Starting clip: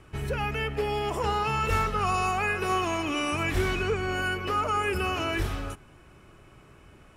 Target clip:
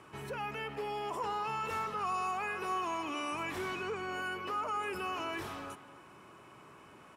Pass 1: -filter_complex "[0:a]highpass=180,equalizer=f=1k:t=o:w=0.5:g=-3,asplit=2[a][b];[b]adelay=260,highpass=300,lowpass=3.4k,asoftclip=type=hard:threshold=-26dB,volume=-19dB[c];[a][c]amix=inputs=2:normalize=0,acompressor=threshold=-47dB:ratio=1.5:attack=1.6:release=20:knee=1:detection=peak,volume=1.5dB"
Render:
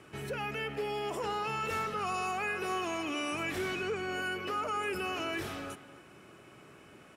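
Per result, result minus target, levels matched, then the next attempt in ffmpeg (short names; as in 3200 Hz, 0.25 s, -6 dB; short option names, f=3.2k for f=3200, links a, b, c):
compressor: peak gain reduction -5.5 dB; 1000 Hz band -2.5 dB
-filter_complex "[0:a]highpass=180,equalizer=f=1k:t=o:w=0.5:g=-3,asplit=2[a][b];[b]adelay=260,highpass=300,lowpass=3.4k,asoftclip=type=hard:threshold=-26dB,volume=-19dB[c];[a][c]amix=inputs=2:normalize=0,acompressor=threshold=-59dB:ratio=1.5:attack=1.6:release=20:knee=1:detection=peak,volume=1.5dB"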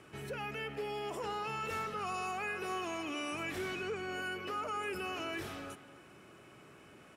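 1000 Hz band -2.5 dB
-filter_complex "[0:a]highpass=180,equalizer=f=1k:t=o:w=0.5:g=8.5,asplit=2[a][b];[b]adelay=260,highpass=300,lowpass=3.4k,asoftclip=type=hard:threshold=-26dB,volume=-19dB[c];[a][c]amix=inputs=2:normalize=0,acompressor=threshold=-59dB:ratio=1.5:attack=1.6:release=20:knee=1:detection=peak,volume=1.5dB"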